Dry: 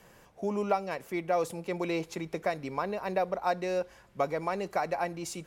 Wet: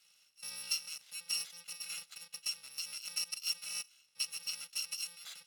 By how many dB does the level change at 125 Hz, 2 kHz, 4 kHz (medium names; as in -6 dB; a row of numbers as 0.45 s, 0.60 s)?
under -30 dB, -7.5 dB, +10.5 dB